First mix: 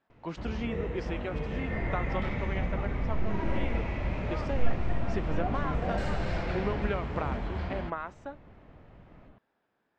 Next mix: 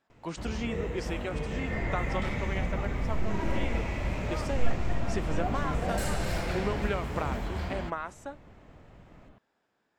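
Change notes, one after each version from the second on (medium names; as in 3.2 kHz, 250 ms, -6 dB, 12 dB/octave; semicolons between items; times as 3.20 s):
master: remove distance through air 180 m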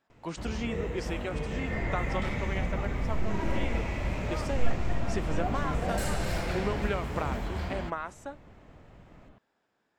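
no change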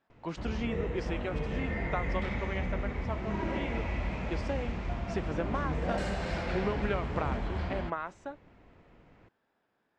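second sound: muted; master: add distance through air 130 m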